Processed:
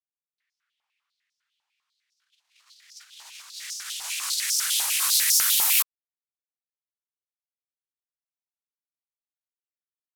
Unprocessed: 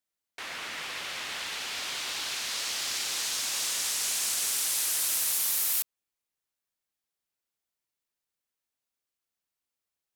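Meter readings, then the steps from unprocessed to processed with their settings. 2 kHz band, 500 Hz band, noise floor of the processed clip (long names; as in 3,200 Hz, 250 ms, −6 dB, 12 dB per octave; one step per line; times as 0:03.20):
+0.5 dB, below −10 dB, below −85 dBFS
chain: noise gate −27 dBFS, range −58 dB
high-pass on a step sequencer 10 Hz 860–5,400 Hz
level +8.5 dB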